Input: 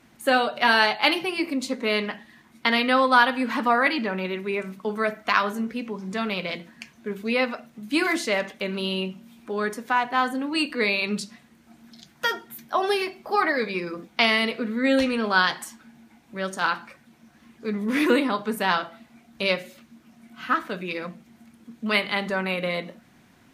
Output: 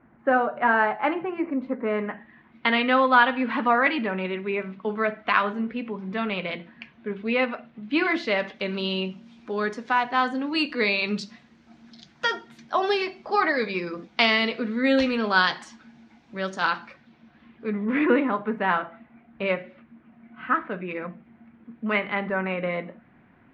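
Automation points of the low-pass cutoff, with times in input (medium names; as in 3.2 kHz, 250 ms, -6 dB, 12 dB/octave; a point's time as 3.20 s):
low-pass 24 dB/octave
1.98 s 1.7 kHz
2.66 s 3.3 kHz
7.87 s 3.3 kHz
8.82 s 5.7 kHz
16.71 s 5.7 kHz
18.09 s 2.3 kHz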